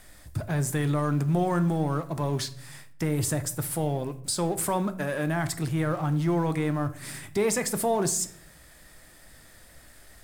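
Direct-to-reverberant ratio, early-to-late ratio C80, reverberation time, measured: 11.0 dB, 19.5 dB, 0.65 s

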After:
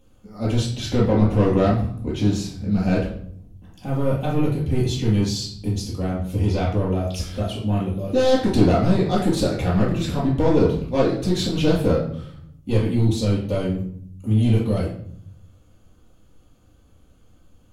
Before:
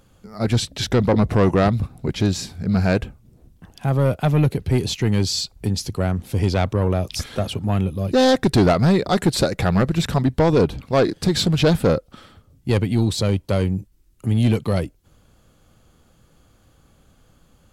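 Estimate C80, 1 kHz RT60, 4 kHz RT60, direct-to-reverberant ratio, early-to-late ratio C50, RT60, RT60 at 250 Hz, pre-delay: 9.0 dB, 0.55 s, 0.45 s, -7.0 dB, 4.0 dB, 0.65 s, 1.0 s, 3 ms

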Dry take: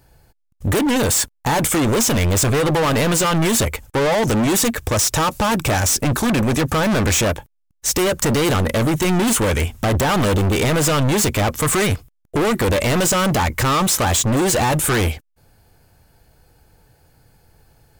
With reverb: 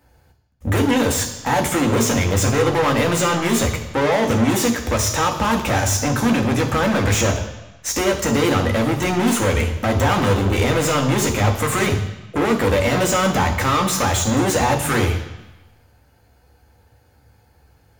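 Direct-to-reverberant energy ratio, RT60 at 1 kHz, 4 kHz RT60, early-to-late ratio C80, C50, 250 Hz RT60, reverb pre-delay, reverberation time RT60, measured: 2.5 dB, 1.1 s, 1.1 s, 11.0 dB, 8.5 dB, 1.0 s, 3 ms, 1.0 s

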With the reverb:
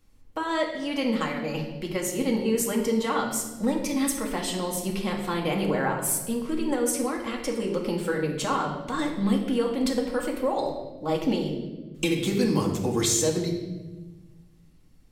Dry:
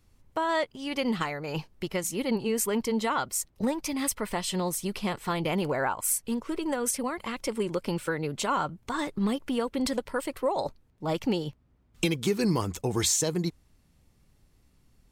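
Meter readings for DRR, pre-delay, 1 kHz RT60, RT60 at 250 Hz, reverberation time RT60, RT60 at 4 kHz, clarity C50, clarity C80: 0.0 dB, 3 ms, 1.0 s, 1.8 s, 1.2 s, 0.95 s, 5.5 dB, 7.5 dB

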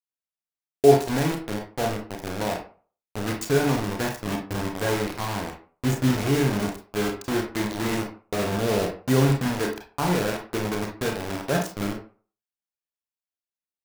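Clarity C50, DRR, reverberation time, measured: 7.0 dB, 1.5 dB, 0.40 s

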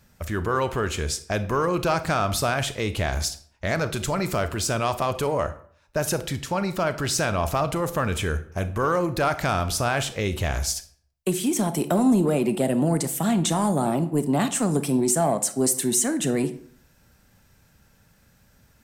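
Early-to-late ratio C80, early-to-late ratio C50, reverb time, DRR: 18.0 dB, 14.5 dB, 0.55 s, 11.0 dB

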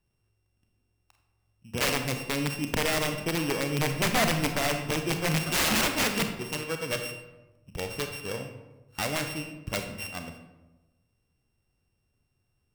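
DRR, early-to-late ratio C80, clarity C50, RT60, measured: 5.5 dB, 9.5 dB, 7.0 dB, 1.1 s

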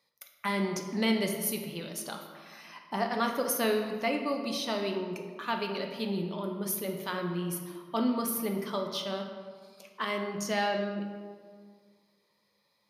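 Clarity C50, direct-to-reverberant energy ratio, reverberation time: 5.5 dB, 3.0 dB, 1.8 s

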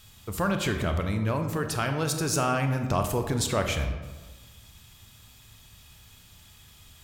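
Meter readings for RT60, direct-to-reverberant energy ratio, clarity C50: 1.3 s, 5.5 dB, 7.5 dB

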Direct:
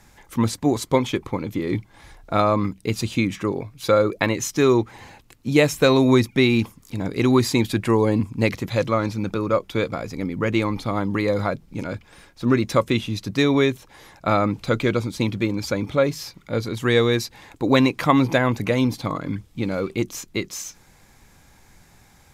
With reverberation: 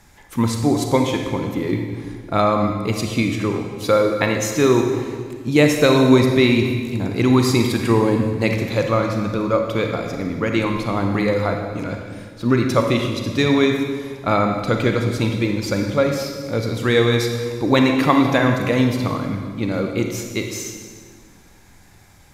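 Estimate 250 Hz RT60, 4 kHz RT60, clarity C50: 2.3 s, 1.5 s, 4.0 dB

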